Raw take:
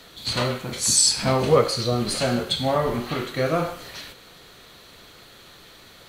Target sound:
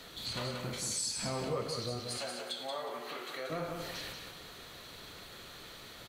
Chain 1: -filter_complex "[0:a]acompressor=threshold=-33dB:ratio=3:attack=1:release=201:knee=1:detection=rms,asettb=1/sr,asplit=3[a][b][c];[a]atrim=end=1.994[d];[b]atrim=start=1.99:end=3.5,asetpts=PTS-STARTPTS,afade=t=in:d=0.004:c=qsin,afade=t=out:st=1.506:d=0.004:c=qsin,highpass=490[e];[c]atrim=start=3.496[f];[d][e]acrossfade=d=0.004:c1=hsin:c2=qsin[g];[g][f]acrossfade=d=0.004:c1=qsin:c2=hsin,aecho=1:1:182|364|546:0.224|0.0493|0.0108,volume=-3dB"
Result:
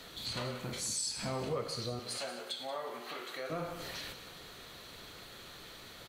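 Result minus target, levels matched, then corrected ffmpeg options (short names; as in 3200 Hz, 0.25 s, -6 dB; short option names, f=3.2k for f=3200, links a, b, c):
echo-to-direct -7.5 dB
-filter_complex "[0:a]acompressor=threshold=-33dB:ratio=3:attack=1:release=201:knee=1:detection=rms,asettb=1/sr,asplit=3[a][b][c];[a]atrim=end=1.994[d];[b]atrim=start=1.99:end=3.5,asetpts=PTS-STARTPTS,afade=t=in:d=0.004:c=qsin,afade=t=out:st=1.506:d=0.004:c=qsin,highpass=490[e];[c]atrim=start=3.496[f];[d][e]acrossfade=d=0.004:c1=hsin:c2=qsin[g];[g][f]acrossfade=d=0.004:c1=qsin:c2=hsin,aecho=1:1:182|364|546:0.531|0.117|0.0257,volume=-3dB"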